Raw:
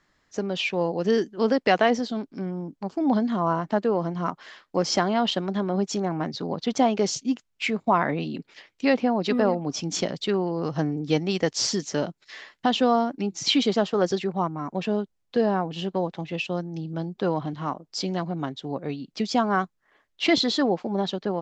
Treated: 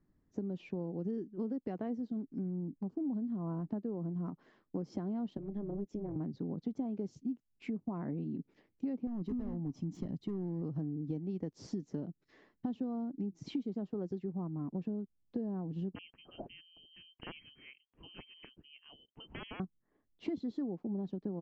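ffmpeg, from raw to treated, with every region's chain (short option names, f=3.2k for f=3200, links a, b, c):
-filter_complex "[0:a]asettb=1/sr,asplit=3[a][b][c];[a]atrim=end=5.374[d];[b]atrim=start=5.37:end=6.16,asetpts=PTS-STARTPTS,afade=t=in:d=0.004:c=qsin,afade=t=out:st=0.786:d=0.004:c=qsin,highpass=f=190:w=0.5412,highpass=f=190:w=1.3066,equalizer=f=190:t=q:w=4:g=-4,equalizer=f=930:t=q:w=4:g=-5,equalizer=f=1.4k:t=q:w=4:g=-5,equalizer=f=4.4k:t=q:w=4:g=-10,lowpass=f=7.3k:w=0.5412,lowpass=f=7.3k:w=1.3066,tremolo=f=210:d=0.75[e];[c]atrim=start=6.156[f];[d][e]acrossfade=d=0.004:c1=hsin:c2=qsin[g];[g][f]acrossfade=d=0.004:c1=qsin:c2=hsin,asettb=1/sr,asplit=3[h][i][j];[h]atrim=end=9.074[k];[i]atrim=start=9.07:end=10.62,asetpts=PTS-STARTPTS,afade=t=in:d=0.004:c=qsin,afade=t=out:st=1.546:d=0.004:c=qsin,asoftclip=type=hard:threshold=-22.5dB,aecho=1:1:1:0.42,atrim=end_sample=68355[l];[j]atrim=start=10.616[m];[k][l]acrossfade=d=0.004:c1=hsin:c2=qsin[n];[n][m]acrossfade=d=0.004:c1=qsin:c2=hsin,asettb=1/sr,asplit=3[o][p][q];[o]atrim=end=15.954[r];[p]atrim=start=15.95:end=19.6,asetpts=PTS-STARTPTS,afade=t=in:d=0.004:c=qsin,afade=t=out:st=3.646:d=0.004:c=qsin,aeval=exprs='(mod(5.31*val(0)+1,2)-1)/5.31':c=same,lowpass=f=2.8k:t=q:w=0.5098,lowpass=f=2.8k:t=q:w=0.6013,lowpass=f=2.8k:t=q:w=0.9,lowpass=f=2.8k:t=q:w=2.563,afreqshift=-3300[s];[q]atrim=start=19.596[t];[r][s]acrossfade=d=0.004:c1=hsin:c2=qsin[u];[u][t]acrossfade=d=0.004:c1=qsin:c2=hsin,firequalizer=gain_entry='entry(270,0);entry(570,-14);entry(1400,-22);entry(3100,-29)':delay=0.05:min_phase=1,acompressor=threshold=-35dB:ratio=6"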